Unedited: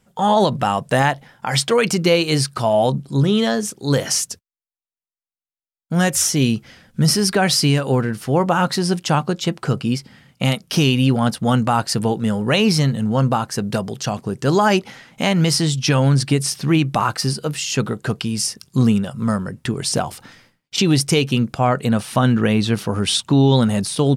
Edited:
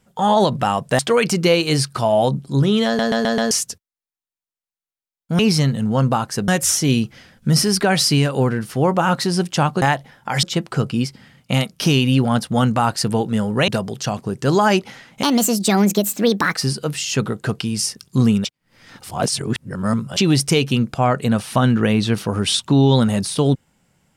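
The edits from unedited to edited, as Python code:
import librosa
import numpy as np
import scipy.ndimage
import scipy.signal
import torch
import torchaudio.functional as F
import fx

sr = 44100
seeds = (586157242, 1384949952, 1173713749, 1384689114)

y = fx.edit(x, sr, fx.move(start_s=0.99, length_s=0.61, to_s=9.34),
    fx.stutter_over(start_s=3.47, slice_s=0.13, count=5),
    fx.move(start_s=12.59, length_s=1.09, to_s=6.0),
    fx.speed_span(start_s=15.23, length_s=1.92, speed=1.46),
    fx.reverse_span(start_s=19.05, length_s=1.72), tone=tone)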